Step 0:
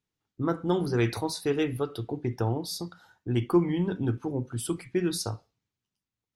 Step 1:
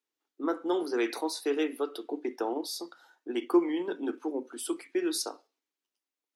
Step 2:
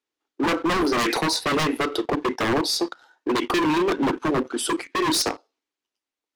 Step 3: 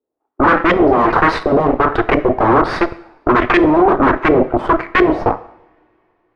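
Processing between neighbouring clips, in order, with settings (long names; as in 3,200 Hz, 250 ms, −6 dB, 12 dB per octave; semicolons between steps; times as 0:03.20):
Butterworth high-pass 270 Hz 48 dB per octave; in parallel at −2 dB: output level in coarse steps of 11 dB; on the sum: level −4 dB
leveller curve on the samples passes 2; high-frequency loss of the air 50 metres; wave folding −24.5 dBFS; level +8.5 dB
harmonic generator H 4 −8 dB, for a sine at −15.5 dBFS; auto-filter low-pass saw up 1.4 Hz 480–2,200 Hz; coupled-rooms reverb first 0.71 s, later 3.3 s, from −26 dB, DRR 13 dB; level +7 dB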